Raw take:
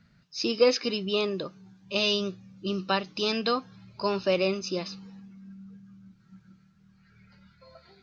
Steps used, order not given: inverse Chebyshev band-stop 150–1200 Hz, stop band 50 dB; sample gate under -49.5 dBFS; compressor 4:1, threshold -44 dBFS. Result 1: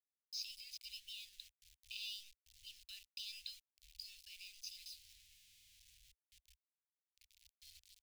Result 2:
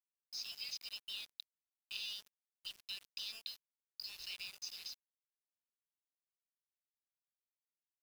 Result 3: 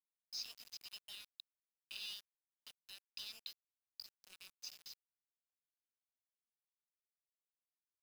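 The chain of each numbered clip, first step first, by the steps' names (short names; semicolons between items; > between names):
compressor > sample gate > inverse Chebyshev band-stop; inverse Chebyshev band-stop > compressor > sample gate; compressor > inverse Chebyshev band-stop > sample gate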